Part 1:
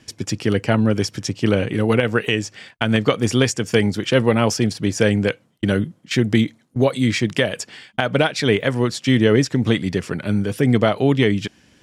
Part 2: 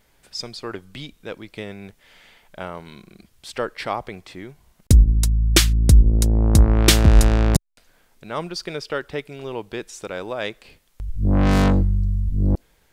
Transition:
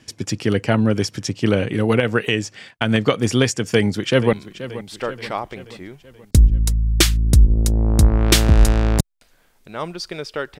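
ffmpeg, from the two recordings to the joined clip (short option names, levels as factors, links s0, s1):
-filter_complex "[0:a]apad=whole_dur=10.59,atrim=end=10.59,atrim=end=4.332[s0];[1:a]atrim=start=2.888:end=9.15[s1];[s0][s1]acrossfade=d=0.004:c1=hsin:c2=hsin,asplit=2[s2][s3];[s3]afade=t=in:st=3.72:d=0.01,afade=t=out:st=4.33:d=0.01,aecho=0:1:480|960|1440|1920|2400:0.188365|0.103601|0.0569804|0.0313392|0.0172366[s4];[s2][s4]amix=inputs=2:normalize=0"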